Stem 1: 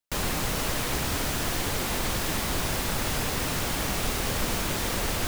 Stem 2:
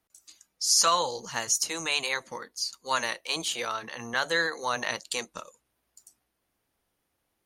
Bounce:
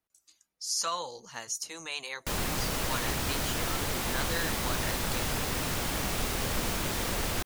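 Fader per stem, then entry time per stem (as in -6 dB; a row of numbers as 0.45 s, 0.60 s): -3.0 dB, -9.0 dB; 2.15 s, 0.00 s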